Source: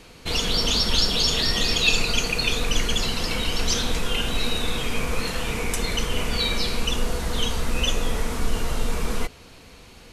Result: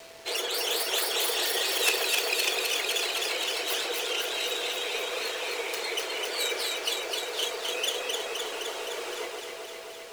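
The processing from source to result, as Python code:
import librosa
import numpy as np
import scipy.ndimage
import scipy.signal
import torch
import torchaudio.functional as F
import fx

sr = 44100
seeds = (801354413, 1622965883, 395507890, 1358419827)

y = fx.tracing_dist(x, sr, depth_ms=0.28)
y = fx.dereverb_blind(y, sr, rt60_s=1.3)
y = scipy.signal.sosfilt(scipy.signal.ellip(4, 1.0, 50, 370.0, 'highpass', fs=sr, output='sos'), y)
y = fx.comb_fb(y, sr, f0_hz=850.0, decay_s=0.2, harmonics='all', damping=0.0, mix_pct=30)
y = fx.echo_alternate(y, sr, ms=129, hz=1700.0, feedback_pct=86, wet_db=-2)
y = y + 10.0 ** (-48.0 / 20.0) * np.sin(2.0 * np.pi * 660.0 * np.arange(len(y)) / sr)
y = fx.peak_eq(y, sr, hz=1100.0, db=-5.5, octaves=0.84)
y = fx.quant_dither(y, sr, seeds[0], bits=8, dither='none')
y = fx.high_shelf(y, sr, hz=11000.0, db=-9.5)
y = y * 10.0 ** (2.0 / 20.0)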